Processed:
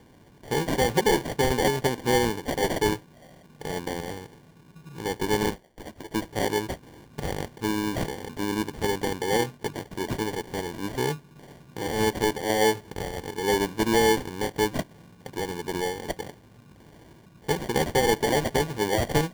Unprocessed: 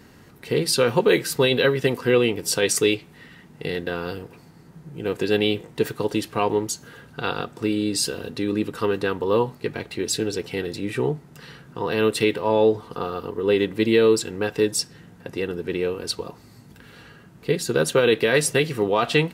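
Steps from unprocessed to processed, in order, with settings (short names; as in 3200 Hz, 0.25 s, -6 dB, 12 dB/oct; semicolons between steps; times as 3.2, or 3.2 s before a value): 5.5–6.14 HPF 860 Hz 24 dB/oct; sample-and-hold 34×; gain -4 dB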